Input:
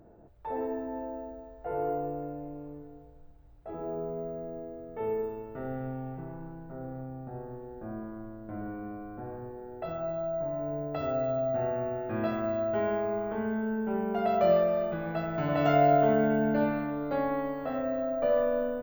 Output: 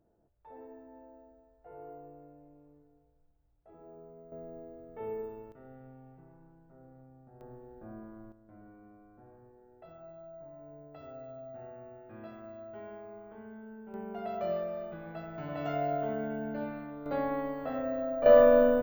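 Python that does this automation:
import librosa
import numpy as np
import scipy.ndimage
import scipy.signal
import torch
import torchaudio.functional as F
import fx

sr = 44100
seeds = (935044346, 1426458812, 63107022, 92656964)

y = fx.gain(x, sr, db=fx.steps((0.0, -16.5), (4.32, -6.5), (5.52, -16.0), (7.41, -7.5), (8.32, -16.5), (13.94, -10.0), (17.06, -2.5), (18.26, 7.5)))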